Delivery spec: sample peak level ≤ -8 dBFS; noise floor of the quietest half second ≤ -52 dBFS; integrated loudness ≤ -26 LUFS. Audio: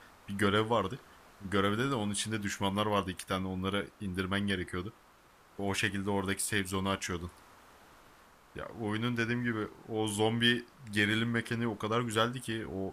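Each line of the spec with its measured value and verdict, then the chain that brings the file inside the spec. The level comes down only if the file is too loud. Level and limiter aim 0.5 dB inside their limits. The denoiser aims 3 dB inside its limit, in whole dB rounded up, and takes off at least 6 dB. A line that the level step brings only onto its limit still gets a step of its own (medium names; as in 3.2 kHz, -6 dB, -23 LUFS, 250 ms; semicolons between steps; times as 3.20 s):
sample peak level -13.5 dBFS: pass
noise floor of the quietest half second -61 dBFS: pass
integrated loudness -32.5 LUFS: pass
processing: none needed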